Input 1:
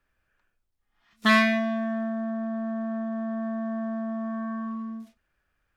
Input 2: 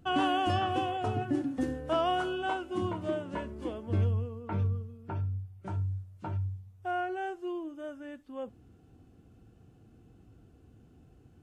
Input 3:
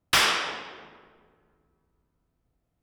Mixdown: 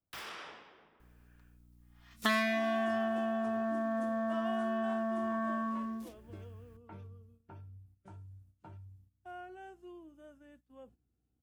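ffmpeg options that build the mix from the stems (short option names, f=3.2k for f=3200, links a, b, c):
-filter_complex "[0:a]aeval=exprs='val(0)+0.000794*(sin(2*PI*60*n/s)+sin(2*PI*2*60*n/s)/2+sin(2*PI*3*60*n/s)/3+sin(2*PI*4*60*n/s)/4+sin(2*PI*5*60*n/s)/5)':c=same,adelay=1000,volume=2dB[a];[1:a]aeval=exprs='val(0)+0.00178*(sin(2*PI*60*n/s)+sin(2*PI*2*60*n/s)/2+sin(2*PI*3*60*n/s)/3+sin(2*PI*4*60*n/s)/4+sin(2*PI*5*60*n/s)/5)':c=same,agate=range=-12dB:threshold=-46dB:ratio=16:detection=peak,adelay=2400,volume=-14.5dB[b];[2:a]equalizer=f=9.1k:t=o:w=2.5:g=-11,alimiter=limit=-23dB:level=0:latency=1:release=24,volume=-14.5dB[c];[a][b][c]amix=inputs=3:normalize=0,highshelf=f=8.1k:g=12,acrossover=split=270|680[d][e][f];[d]acompressor=threshold=-49dB:ratio=4[g];[e]acompressor=threshold=-36dB:ratio=4[h];[f]acompressor=threshold=-32dB:ratio=4[i];[g][h][i]amix=inputs=3:normalize=0"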